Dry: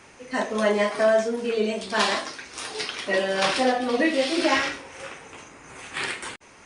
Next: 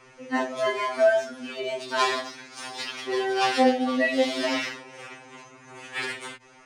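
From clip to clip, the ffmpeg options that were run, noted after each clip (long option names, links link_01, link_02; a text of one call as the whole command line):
ffmpeg -i in.wav -af "bandreject=frequency=60:width_type=h:width=6,bandreject=frequency=120:width_type=h:width=6,bandreject=frequency=180:width_type=h:width=6,bandreject=frequency=240:width_type=h:width=6,adynamicsmooth=sensitivity=7.5:basefreq=7800,afftfilt=real='re*2.45*eq(mod(b,6),0)':imag='im*2.45*eq(mod(b,6),0)':win_size=2048:overlap=0.75" out.wav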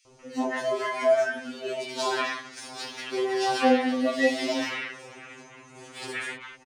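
ffmpeg -i in.wav -filter_complex "[0:a]acrossover=split=1000|3300[link_01][link_02][link_03];[link_01]adelay=50[link_04];[link_02]adelay=190[link_05];[link_04][link_05][link_03]amix=inputs=3:normalize=0" out.wav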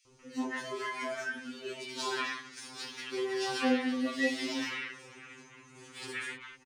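ffmpeg -i in.wav -af "equalizer=frequency=660:width_type=o:width=0.54:gain=-14.5,volume=-4.5dB" out.wav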